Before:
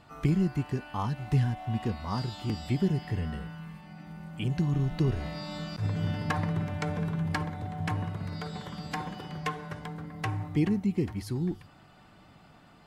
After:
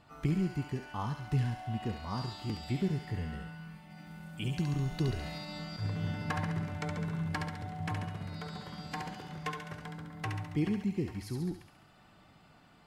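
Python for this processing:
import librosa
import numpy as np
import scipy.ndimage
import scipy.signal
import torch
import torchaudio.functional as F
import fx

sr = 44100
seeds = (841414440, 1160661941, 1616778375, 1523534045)

y = fx.high_shelf(x, sr, hz=3500.0, db=8.0, at=(3.9, 5.38))
y = fx.echo_thinned(y, sr, ms=69, feedback_pct=64, hz=1100.0, wet_db=-3.5)
y = y * 10.0 ** (-5.0 / 20.0)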